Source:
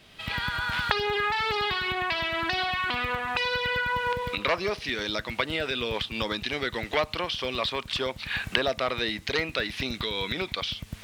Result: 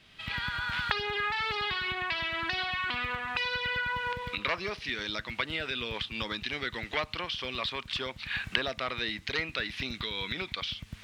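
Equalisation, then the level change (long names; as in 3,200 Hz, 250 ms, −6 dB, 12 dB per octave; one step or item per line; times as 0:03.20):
low-pass filter 2,700 Hz 6 dB per octave
low-shelf EQ 260 Hz −6 dB
parametric band 580 Hz −9.5 dB 2.2 octaves
+1.5 dB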